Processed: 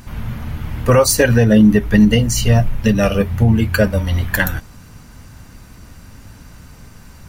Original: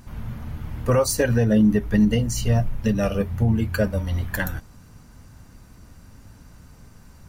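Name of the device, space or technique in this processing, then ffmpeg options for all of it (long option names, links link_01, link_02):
presence and air boost: -af "equalizer=frequency=2600:width_type=o:width=1.8:gain=4.5,highshelf=frequency=11000:gain=4,volume=7dB"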